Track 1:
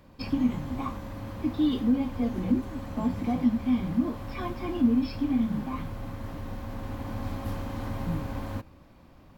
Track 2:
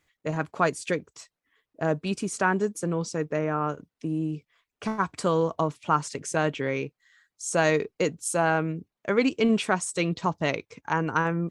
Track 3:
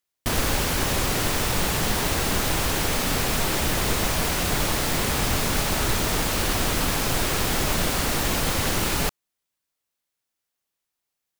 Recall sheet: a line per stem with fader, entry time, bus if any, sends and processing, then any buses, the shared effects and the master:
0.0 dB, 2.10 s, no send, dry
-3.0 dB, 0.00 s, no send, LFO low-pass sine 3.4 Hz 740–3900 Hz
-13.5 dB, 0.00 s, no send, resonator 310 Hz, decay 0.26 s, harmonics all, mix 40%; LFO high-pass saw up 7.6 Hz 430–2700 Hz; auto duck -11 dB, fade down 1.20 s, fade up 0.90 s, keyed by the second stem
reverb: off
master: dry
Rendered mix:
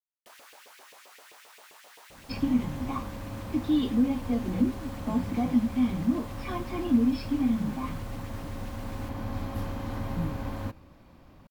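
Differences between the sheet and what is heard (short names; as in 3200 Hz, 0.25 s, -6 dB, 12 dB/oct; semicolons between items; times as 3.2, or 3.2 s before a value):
stem 2: muted; stem 3 -13.5 dB -> -24.5 dB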